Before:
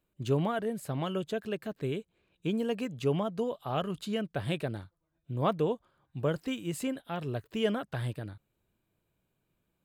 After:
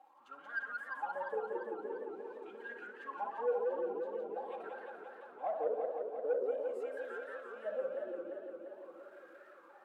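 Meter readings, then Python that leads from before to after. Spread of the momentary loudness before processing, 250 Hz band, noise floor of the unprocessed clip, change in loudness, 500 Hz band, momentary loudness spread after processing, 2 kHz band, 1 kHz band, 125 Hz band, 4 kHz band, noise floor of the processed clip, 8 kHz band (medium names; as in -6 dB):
8 LU, -19.0 dB, -80 dBFS, -6.5 dB, -3.5 dB, 16 LU, -0.5 dB, -3.5 dB, under -35 dB, under -20 dB, -59 dBFS, under -25 dB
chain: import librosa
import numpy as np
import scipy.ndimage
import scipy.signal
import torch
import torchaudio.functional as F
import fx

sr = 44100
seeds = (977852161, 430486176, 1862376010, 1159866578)

y = x + 0.5 * 10.0 ** (-42.0 / 20.0) * np.sign(x)
y = fx.wah_lfo(y, sr, hz=0.46, low_hz=360.0, high_hz=1600.0, q=19.0)
y = scipy.signal.sosfilt(scipy.signal.butter(2, 280.0, 'highpass', fs=sr, output='sos'), y)
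y = fx.high_shelf(y, sr, hz=8700.0, db=9.0)
y = y + 0.74 * np.pad(y, (int(3.7 * sr / 1000.0), 0))[:len(y)]
y = fx.echo_filtered(y, sr, ms=64, feedback_pct=54, hz=1900.0, wet_db=-5.5)
y = 10.0 ** (-28.0 / 20.0) * np.tanh(y / 10.0 ** (-28.0 / 20.0))
y = fx.echo_warbled(y, sr, ms=173, feedback_pct=76, rate_hz=2.8, cents=211, wet_db=-4)
y = F.gain(torch.from_numpy(y), 3.5).numpy()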